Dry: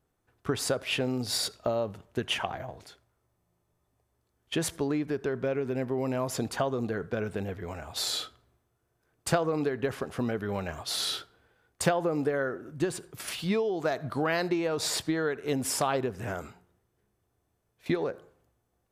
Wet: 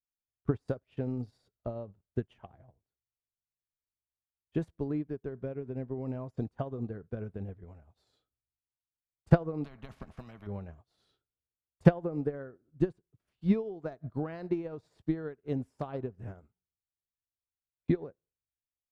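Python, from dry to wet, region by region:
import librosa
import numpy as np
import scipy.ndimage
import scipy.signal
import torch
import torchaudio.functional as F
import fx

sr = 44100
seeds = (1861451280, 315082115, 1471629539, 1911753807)

y = fx.chain(x, sr, fx.peak_eq(hz=410.0, db=-9.0, octaves=0.76),
    fx.small_body(hz=(210.0, 640.0, 1100.0, 2200.0), ring_ms=50, db=15),
    fx.spectral_comp(ratio=4.0), at=(9.64, 10.47))
y = fx.tilt_eq(y, sr, slope=-4.0)
y = fx.upward_expand(y, sr, threshold_db=-43.0, expansion=2.5)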